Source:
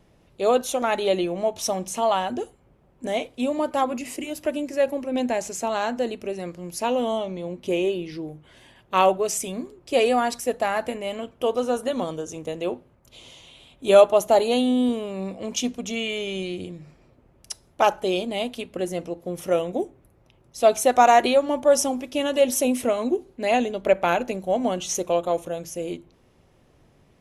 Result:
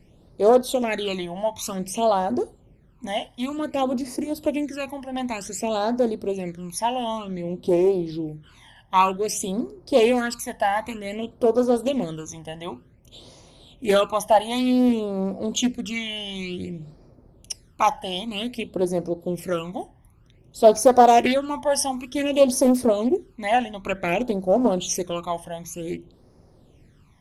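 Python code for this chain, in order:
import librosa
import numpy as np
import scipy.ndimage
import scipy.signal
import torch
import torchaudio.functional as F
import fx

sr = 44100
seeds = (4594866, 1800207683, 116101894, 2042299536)

y = fx.law_mismatch(x, sr, coded='mu', at=(20.64, 21.23))
y = fx.phaser_stages(y, sr, stages=12, low_hz=410.0, high_hz=2900.0, hz=0.54, feedback_pct=40)
y = fx.doppler_dist(y, sr, depth_ms=0.31)
y = F.gain(torch.from_numpy(y), 3.5).numpy()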